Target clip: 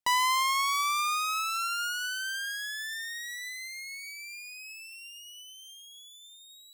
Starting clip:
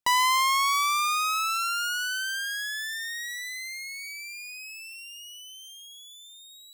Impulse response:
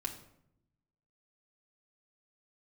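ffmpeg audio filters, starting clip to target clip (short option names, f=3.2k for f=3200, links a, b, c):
-filter_complex "[0:a]asplit=2[a][b];[1:a]atrim=start_sample=2205,asetrate=24255,aresample=44100,lowshelf=f=430:g=-10.5[c];[b][c]afir=irnorm=-1:irlink=0,volume=-18.5dB[d];[a][d]amix=inputs=2:normalize=0,volume=-4.5dB"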